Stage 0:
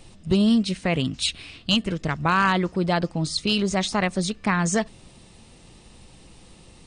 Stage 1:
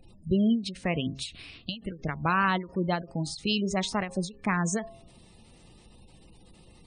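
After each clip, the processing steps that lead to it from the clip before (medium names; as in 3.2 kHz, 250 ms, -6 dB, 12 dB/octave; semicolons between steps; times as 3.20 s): spectral gate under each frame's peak -25 dB strong; de-hum 134.9 Hz, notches 8; endings held to a fixed fall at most 160 dB/s; trim -4.5 dB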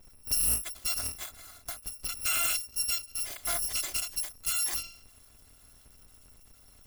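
bit-reversed sample order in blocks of 256 samples; short-mantissa float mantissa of 4-bit; loudspeaker Doppler distortion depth 0.16 ms; trim -1.5 dB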